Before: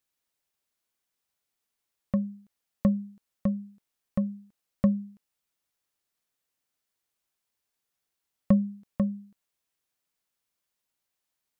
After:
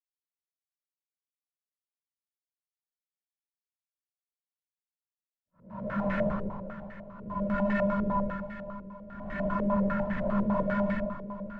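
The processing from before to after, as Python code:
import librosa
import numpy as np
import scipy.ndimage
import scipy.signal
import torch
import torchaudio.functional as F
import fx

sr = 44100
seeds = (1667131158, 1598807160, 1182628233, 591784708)

y = fx.block_reorder(x, sr, ms=156.0, group=2)
y = fx.hum_notches(y, sr, base_hz=60, count=7)
y = fx.leveller(y, sr, passes=2)
y = fx.schmitt(y, sr, flips_db=-30.5)
y = fx.paulstretch(y, sr, seeds[0], factor=4.2, window_s=0.25, from_s=0.54)
y = 10.0 ** (-25.0 / 20.0) * np.tanh(y / 10.0 ** (-25.0 / 20.0))
y = fx.echo_feedback(y, sr, ms=516, feedback_pct=51, wet_db=-12.0)
y = fx.filter_held_lowpass(y, sr, hz=10.0, low_hz=430.0, high_hz=1800.0)
y = y * 10.0 ** (3.5 / 20.0)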